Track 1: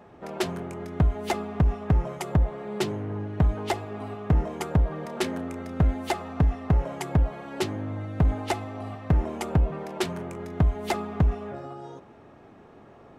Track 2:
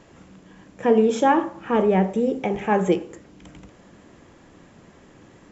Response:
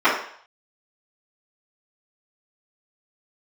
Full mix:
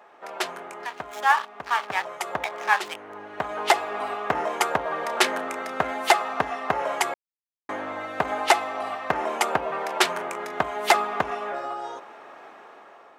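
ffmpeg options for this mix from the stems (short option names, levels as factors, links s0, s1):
-filter_complex "[0:a]volume=1.19,asplit=3[s0][s1][s2];[s0]atrim=end=7.14,asetpts=PTS-STARTPTS,afade=t=out:st=7.136:d=0.004:c=hsin[s3];[s1]atrim=start=7.14:end=7.69,asetpts=PTS-STARTPTS,volume=0[s4];[s2]atrim=start=7.69,asetpts=PTS-STARTPTS,afade=t=in:d=0.004:c=hsin[s5];[s3][s4][s5]concat=n=3:v=0:a=1[s6];[1:a]highpass=f=980:w=0.5412,highpass=f=980:w=1.3066,highshelf=f=5600:g=-7.5,aeval=exprs='sgn(val(0))*max(abs(val(0))-0.015,0)':c=same,volume=0.891,asplit=2[s7][s8];[s8]apad=whole_len=581352[s9];[s6][s9]sidechaincompress=threshold=0.0141:ratio=12:attack=16:release=1120[s10];[s10][s7]amix=inputs=2:normalize=0,highpass=660,dynaudnorm=f=830:g=3:m=2.82,equalizer=f=1400:t=o:w=1.9:g=3.5"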